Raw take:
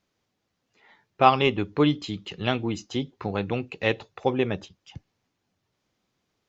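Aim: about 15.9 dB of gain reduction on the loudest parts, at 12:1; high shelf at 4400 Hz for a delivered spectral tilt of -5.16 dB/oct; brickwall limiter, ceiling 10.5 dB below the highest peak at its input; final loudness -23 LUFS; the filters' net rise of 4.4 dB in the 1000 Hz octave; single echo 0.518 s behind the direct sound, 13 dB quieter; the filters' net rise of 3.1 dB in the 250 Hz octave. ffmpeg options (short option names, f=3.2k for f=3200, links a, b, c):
-af "equalizer=f=250:t=o:g=3.5,equalizer=f=1k:t=o:g=6,highshelf=f=4.4k:g=-4,acompressor=threshold=-23dB:ratio=12,alimiter=limit=-19dB:level=0:latency=1,aecho=1:1:518:0.224,volume=10.5dB"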